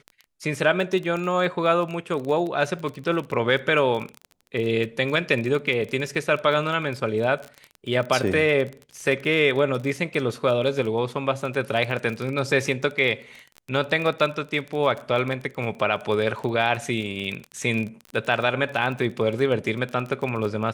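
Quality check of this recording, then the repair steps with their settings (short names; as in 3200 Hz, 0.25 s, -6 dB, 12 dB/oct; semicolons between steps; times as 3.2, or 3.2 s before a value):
crackle 25/s -28 dBFS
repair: de-click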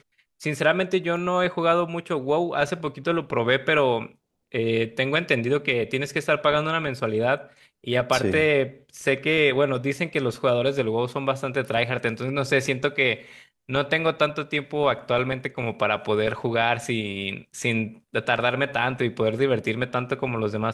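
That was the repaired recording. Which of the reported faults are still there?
none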